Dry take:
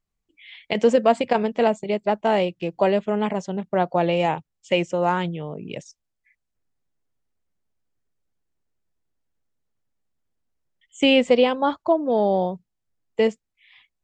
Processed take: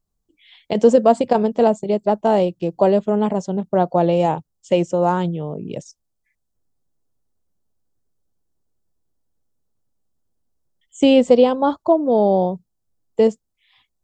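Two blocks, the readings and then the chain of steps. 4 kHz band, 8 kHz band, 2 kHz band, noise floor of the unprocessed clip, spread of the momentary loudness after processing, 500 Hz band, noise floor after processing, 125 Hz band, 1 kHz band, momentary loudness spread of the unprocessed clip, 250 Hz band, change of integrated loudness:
-3.5 dB, n/a, -6.0 dB, -80 dBFS, 12 LU, +4.5 dB, -74 dBFS, +5.5 dB, +3.0 dB, 12 LU, +5.0 dB, +4.0 dB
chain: bell 2200 Hz -14.5 dB 1.3 oct; gain +5.5 dB

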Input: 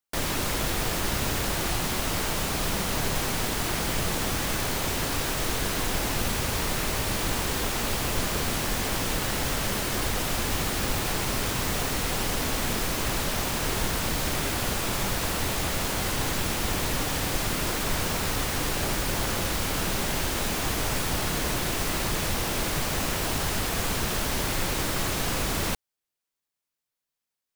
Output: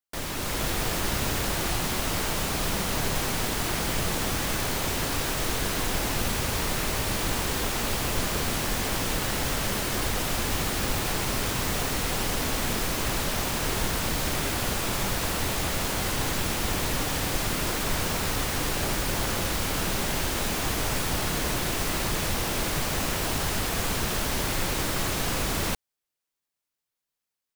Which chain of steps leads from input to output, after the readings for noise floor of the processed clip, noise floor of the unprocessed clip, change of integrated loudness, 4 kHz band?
under -85 dBFS, under -85 dBFS, 0.0 dB, 0.0 dB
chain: AGC gain up to 5 dB; gain -5 dB

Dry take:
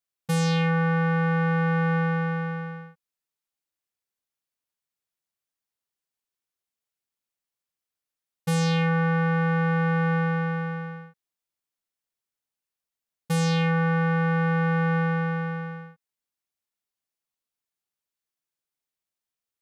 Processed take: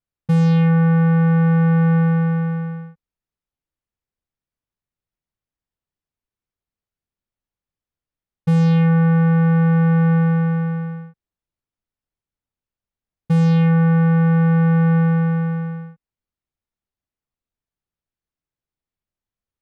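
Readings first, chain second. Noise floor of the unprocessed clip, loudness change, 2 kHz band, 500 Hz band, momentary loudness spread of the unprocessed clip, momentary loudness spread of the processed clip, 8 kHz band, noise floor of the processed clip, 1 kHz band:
under -85 dBFS, +8.0 dB, -1.5 dB, +2.5 dB, 11 LU, 11 LU, under -10 dB, under -85 dBFS, 0.0 dB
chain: RIAA curve playback

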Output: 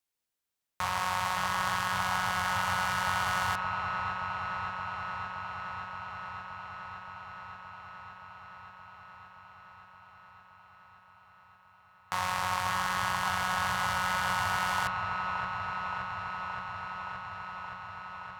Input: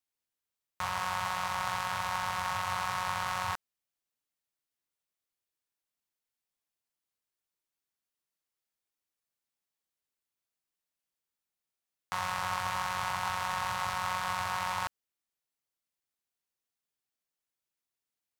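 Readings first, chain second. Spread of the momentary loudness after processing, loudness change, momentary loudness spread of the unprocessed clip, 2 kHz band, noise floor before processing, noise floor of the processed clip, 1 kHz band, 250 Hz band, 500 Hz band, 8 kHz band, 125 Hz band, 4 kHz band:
18 LU, +1.0 dB, 4 LU, +6.0 dB, under -85 dBFS, -61 dBFS, +3.5 dB, +6.0 dB, +3.5 dB, +2.5 dB, +5.0 dB, +3.5 dB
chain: dark delay 0.572 s, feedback 80%, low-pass 2500 Hz, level -5 dB; gain +2.5 dB

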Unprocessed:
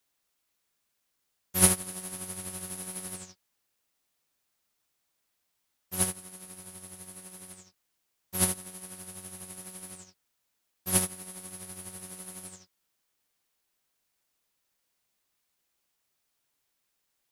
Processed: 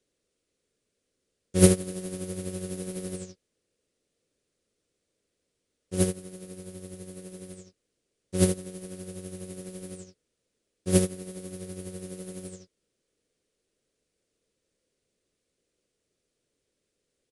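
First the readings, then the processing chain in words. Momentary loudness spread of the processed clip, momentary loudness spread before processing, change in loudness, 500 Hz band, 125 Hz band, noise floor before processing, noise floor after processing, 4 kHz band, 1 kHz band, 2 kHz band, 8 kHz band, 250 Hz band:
18 LU, 18 LU, +1.5 dB, +12.0 dB, +9.0 dB, -79 dBFS, -81 dBFS, -1.5 dB, -4.5 dB, -2.0 dB, -4.5 dB, +10.0 dB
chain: resonant low shelf 640 Hz +9.5 dB, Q 3; downsampling 22050 Hz; gain -1 dB

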